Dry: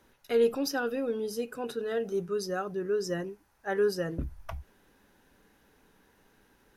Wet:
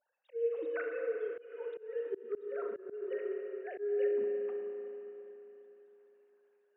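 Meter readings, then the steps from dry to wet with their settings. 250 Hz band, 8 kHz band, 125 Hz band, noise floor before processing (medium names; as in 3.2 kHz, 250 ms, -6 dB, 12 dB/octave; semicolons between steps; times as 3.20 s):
-13.5 dB, under -35 dB, under -30 dB, -66 dBFS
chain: formants replaced by sine waves; spring tank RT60 3.6 s, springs 34/57 ms, chirp 45 ms, DRR 2 dB; slow attack 278 ms; trim -3.5 dB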